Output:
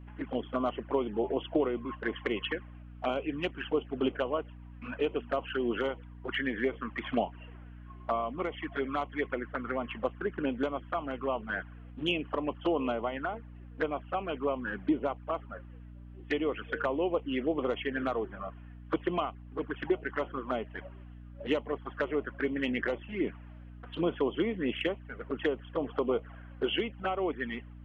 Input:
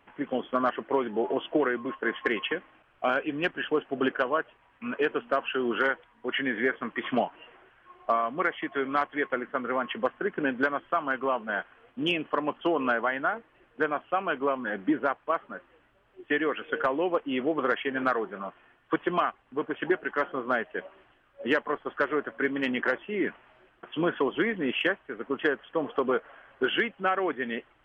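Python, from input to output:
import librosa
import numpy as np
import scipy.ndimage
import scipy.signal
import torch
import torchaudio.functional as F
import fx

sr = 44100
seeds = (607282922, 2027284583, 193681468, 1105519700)

y = fx.env_flanger(x, sr, rest_ms=5.5, full_db=-23.5)
y = fx.add_hum(y, sr, base_hz=60, snr_db=14)
y = F.gain(torch.from_numpy(y), -1.5).numpy()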